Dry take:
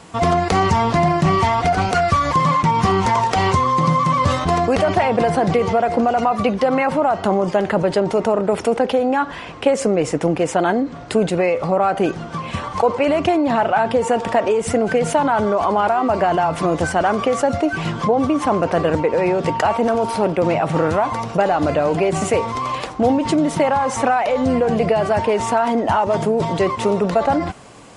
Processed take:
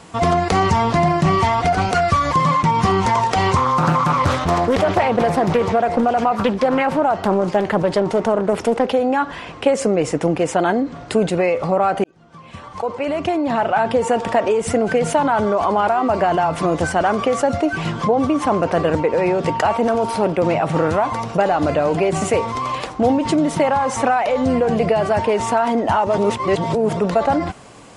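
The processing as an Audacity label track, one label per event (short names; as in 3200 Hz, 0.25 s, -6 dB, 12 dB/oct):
3.560000	8.920000	Doppler distortion depth 0.77 ms
12.040000	13.880000	fade in
26.180000	26.970000	reverse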